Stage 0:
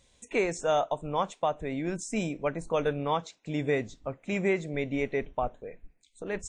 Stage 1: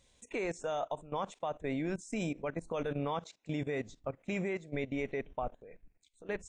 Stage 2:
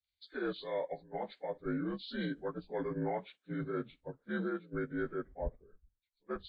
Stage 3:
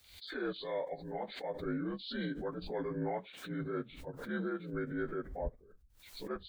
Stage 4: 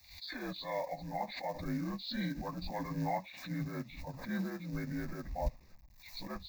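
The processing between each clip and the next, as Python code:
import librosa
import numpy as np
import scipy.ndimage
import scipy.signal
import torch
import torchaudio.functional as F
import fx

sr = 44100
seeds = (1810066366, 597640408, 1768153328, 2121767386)

y1 = fx.level_steps(x, sr, step_db=17)
y2 = fx.partial_stretch(y1, sr, pct=81)
y2 = fx.band_widen(y2, sr, depth_pct=100)
y3 = fx.pre_swell(y2, sr, db_per_s=77.0)
y3 = F.gain(torch.from_numpy(y3), -1.0).numpy()
y4 = fx.quant_companded(y3, sr, bits=6)
y4 = fx.fixed_phaser(y4, sr, hz=2100.0, stages=8)
y4 = F.gain(torch.from_numpy(y4), 5.5).numpy()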